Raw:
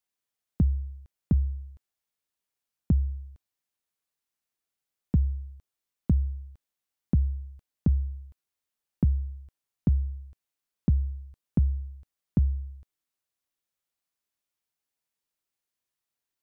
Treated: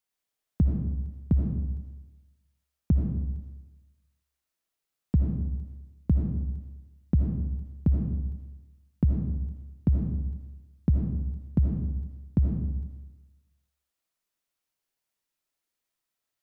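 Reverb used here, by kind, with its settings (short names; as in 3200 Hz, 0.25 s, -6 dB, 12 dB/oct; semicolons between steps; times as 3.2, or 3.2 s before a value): digital reverb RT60 1.1 s, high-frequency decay 0.65×, pre-delay 40 ms, DRR 0.5 dB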